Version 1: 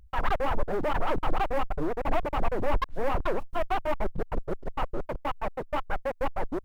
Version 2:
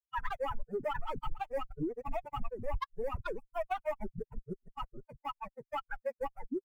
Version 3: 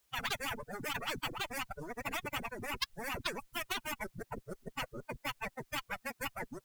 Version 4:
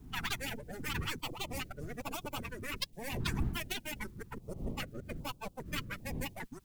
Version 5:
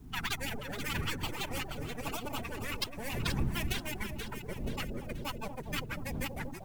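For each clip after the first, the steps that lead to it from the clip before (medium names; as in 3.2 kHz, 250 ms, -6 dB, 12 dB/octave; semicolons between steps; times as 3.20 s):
expander on every frequency bin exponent 3; compression 6:1, threshold -32 dBFS, peak gain reduction 12 dB; trim +2 dB
spectrum-flattening compressor 10:1; trim +5 dB
partial rectifier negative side -7 dB; wind noise 180 Hz -46 dBFS; step-sequenced notch 2.5 Hz 550–1900 Hz; trim +3 dB
echo whose repeats swap between lows and highs 240 ms, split 830 Hz, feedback 67%, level -4.5 dB; trim +1.5 dB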